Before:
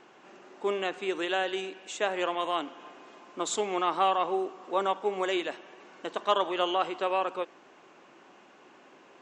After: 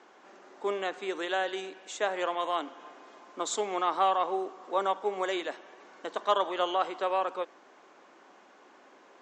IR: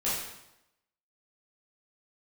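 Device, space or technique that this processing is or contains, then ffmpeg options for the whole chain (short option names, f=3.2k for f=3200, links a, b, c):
television speaker: -af "highpass=f=210:w=0.5412,highpass=f=210:w=1.3066,equalizer=f=230:t=q:w=4:g=-3,equalizer=f=350:t=q:w=4:g=-4,equalizer=f=2.7k:t=q:w=4:g=-7,lowpass=f=8.3k:w=0.5412,lowpass=f=8.3k:w=1.3066"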